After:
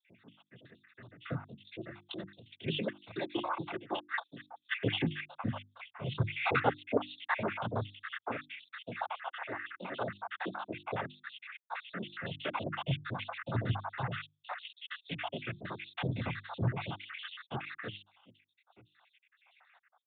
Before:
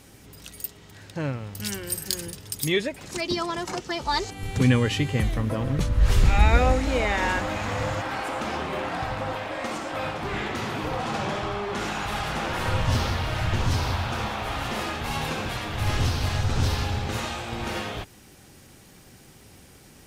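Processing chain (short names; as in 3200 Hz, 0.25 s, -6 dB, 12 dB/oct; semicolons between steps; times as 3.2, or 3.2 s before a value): random spectral dropouts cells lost 79%; noise vocoder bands 16; notches 50/100/150/200/250/300/350 Hz; downsampling 8000 Hz; gain -2 dB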